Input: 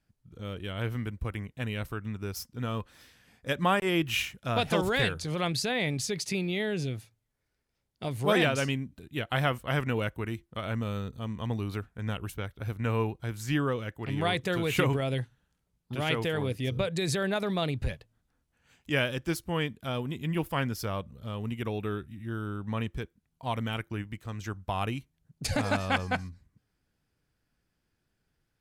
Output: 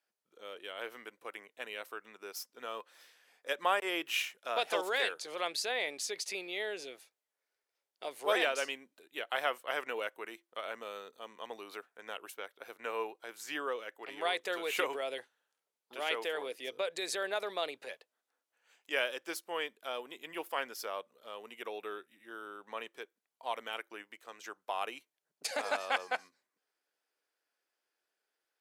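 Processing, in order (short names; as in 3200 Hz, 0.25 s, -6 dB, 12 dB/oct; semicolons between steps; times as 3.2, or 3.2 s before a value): HPF 430 Hz 24 dB/oct; gain -3.5 dB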